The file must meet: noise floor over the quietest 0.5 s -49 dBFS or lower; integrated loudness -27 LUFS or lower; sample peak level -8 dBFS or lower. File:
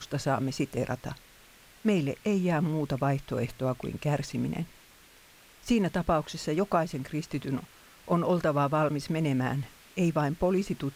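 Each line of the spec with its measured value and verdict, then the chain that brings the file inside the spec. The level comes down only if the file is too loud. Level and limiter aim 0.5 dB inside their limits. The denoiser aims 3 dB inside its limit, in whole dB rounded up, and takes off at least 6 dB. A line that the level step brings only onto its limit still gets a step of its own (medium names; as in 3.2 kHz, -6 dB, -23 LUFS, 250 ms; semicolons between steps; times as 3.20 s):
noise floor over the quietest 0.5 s -56 dBFS: pass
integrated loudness -29.5 LUFS: pass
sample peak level -12.0 dBFS: pass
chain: none needed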